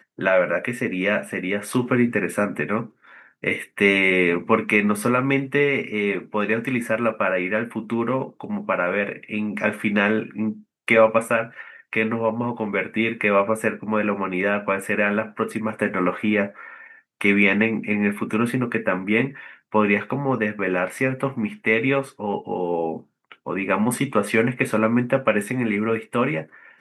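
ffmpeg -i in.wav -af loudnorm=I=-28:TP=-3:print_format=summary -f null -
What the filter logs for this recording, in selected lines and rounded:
Input Integrated:    -22.1 LUFS
Input True Peak:      -3.0 dBTP
Input LRA:             3.0 LU
Input Threshold:     -32.4 LUFS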